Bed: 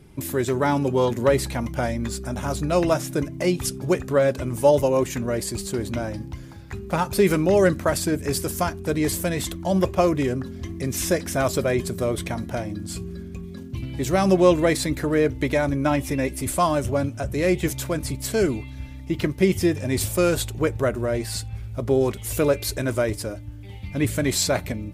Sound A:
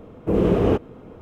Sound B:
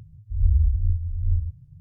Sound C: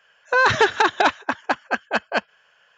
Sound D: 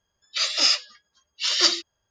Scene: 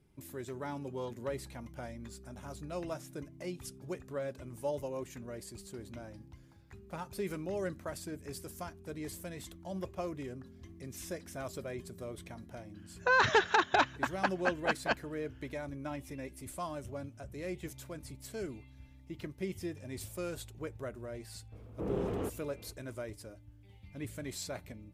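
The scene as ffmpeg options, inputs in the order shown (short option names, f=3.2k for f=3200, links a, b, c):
-filter_complex "[0:a]volume=-19dB[a];[1:a]asoftclip=type=tanh:threshold=-16.5dB[b];[3:a]atrim=end=2.77,asetpts=PTS-STARTPTS,volume=-9.5dB,afade=t=in:d=0.004:c=hsin,afade=t=out:st=2.766:d=0.004:c=hsin,adelay=12740[c];[b]atrim=end=1.21,asetpts=PTS-STARTPTS,volume=-14dB,afade=t=in:d=0.004:c=hsin,afade=t=out:st=1.206:d=0.004:c=hsin,adelay=21520[d];[a][c][d]amix=inputs=3:normalize=0"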